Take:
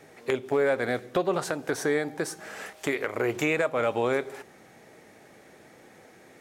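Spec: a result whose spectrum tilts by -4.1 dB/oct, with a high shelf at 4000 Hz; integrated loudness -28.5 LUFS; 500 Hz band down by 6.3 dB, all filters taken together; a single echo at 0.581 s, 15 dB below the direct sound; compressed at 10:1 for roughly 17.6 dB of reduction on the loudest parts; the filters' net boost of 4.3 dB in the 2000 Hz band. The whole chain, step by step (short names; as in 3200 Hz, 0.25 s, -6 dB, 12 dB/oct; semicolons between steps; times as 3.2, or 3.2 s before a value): bell 500 Hz -8 dB; bell 2000 Hz +7.5 dB; high shelf 4000 Hz -7.5 dB; compressor 10:1, threshold -38 dBFS; echo 0.581 s -15 dB; gain +15 dB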